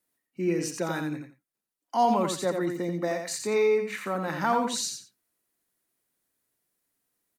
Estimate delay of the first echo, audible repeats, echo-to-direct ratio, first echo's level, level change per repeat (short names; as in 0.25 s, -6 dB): 86 ms, 2, -6.0 dB, -6.0 dB, -13.5 dB